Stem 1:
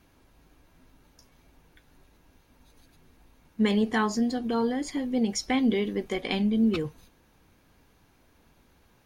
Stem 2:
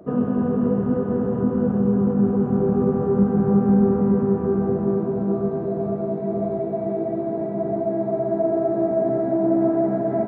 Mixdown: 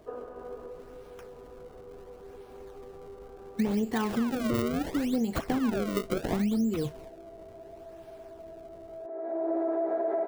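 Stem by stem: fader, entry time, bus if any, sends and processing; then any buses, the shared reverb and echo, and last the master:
+1.5 dB, 0.00 s, no send, automatic gain control gain up to 3 dB; sample-and-hold swept by an LFO 30×, swing 160% 0.71 Hz; de-essing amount 65%
−7.5 dB, 0.00 s, no send, Butterworth high-pass 370 Hz 36 dB per octave; automatic gain control gain up to 9 dB; brickwall limiter −12.5 dBFS, peak gain reduction 8 dB; automatic ducking −20 dB, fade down 0.90 s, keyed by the first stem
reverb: not used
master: downward compressor 6 to 1, threshold −25 dBFS, peak gain reduction 10 dB

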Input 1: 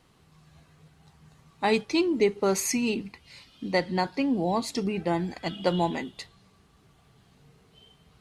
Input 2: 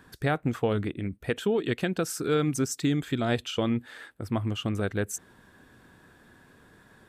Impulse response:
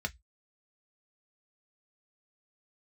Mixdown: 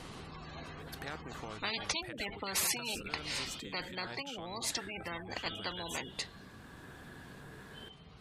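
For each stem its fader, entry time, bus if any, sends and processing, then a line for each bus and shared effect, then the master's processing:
0:03.47 −5.5 dB → 0:03.78 −17 dB, 0.00 s, no send, mains-hum notches 60/120 Hz; gate on every frequency bin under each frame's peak −30 dB strong
−17.0 dB, 0.80 s, no send, downward compressor 3 to 1, threshold −39 dBFS, peak gain reduction 13.5 dB; automatic ducking −6 dB, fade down 2.00 s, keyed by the first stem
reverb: not used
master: every bin compressed towards the loudest bin 10 to 1

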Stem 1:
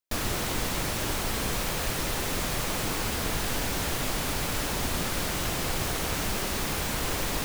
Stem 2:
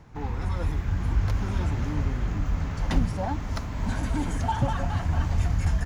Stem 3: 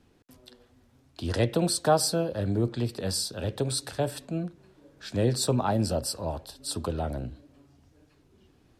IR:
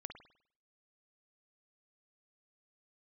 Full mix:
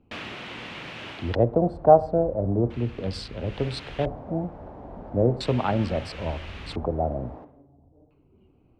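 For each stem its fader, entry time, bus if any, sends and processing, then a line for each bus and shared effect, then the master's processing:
0:01.09 −4.5 dB → 0:01.55 −17 dB → 0:03.41 −17 dB → 0:03.61 −9 dB, 0.00 s, send −4 dB, high-pass filter 120 Hz; automatic ducking −11 dB, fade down 0.35 s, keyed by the third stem
−16.5 dB, 1.10 s, no send, no processing
0.0 dB, 0.00 s, send −8.5 dB, adaptive Wiener filter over 25 samples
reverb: on, pre-delay 50 ms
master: auto-filter low-pass square 0.37 Hz 720–2,800 Hz

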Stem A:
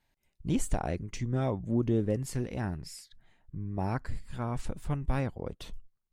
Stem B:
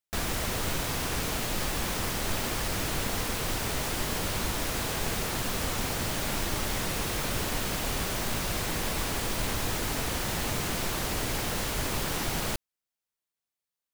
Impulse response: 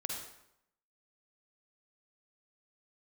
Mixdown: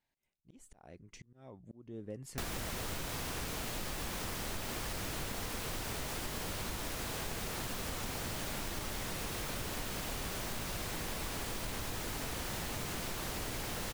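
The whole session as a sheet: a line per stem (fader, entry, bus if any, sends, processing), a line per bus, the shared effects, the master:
−8.5 dB, 0.00 s, no send, low-shelf EQ 100 Hz −9.5 dB; volume swells 599 ms
−1.0 dB, 2.25 s, no send, no processing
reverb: not used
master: downward compressor 6 to 1, threshold −36 dBFS, peak gain reduction 10 dB

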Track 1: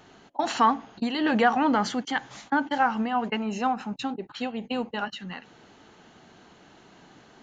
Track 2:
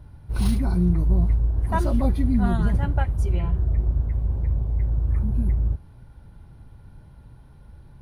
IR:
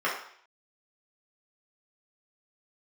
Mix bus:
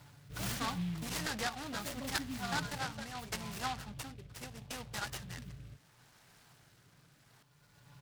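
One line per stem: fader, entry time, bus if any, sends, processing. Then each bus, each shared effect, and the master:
−15.0 dB, 0.00 s, no send, no processing
−4.0 dB, 0.00 s, no send, Bessel high-pass filter 150 Hz, order 2; comb filter 6.9 ms, depth 90%; automatic ducking −12 dB, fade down 0.90 s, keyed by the first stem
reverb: not used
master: drawn EQ curve 150 Hz 0 dB, 340 Hz −6 dB, 1,900 Hz +11 dB; rotating-speaker cabinet horn 0.75 Hz; short delay modulated by noise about 2,600 Hz, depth 0.089 ms

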